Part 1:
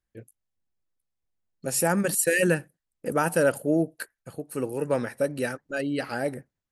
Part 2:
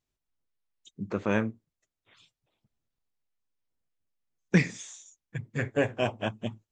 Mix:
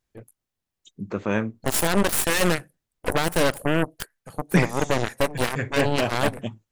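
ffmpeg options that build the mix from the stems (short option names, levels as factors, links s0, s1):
-filter_complex "[0:a]alimiter=limit=0.15:level=0:latency=1:release=69,aeval=exprs='0.15*(cos(1*acos(clip(val(0)/0.15,-1,1)))-cos(1*PI/2))+0.0473*(cos(4*acos(clip(val(0)/0.15,-1,1)))-cos(4*PI/2))+0.0422*(cos(7*acos(clip(val(0)/0.15,-1,1)))-cos(7*PI/2))':c=same,volume=1.33[s0];[1:a]volume=1.33[s1];[s0][s1]amix=inputs=2:normalize=0"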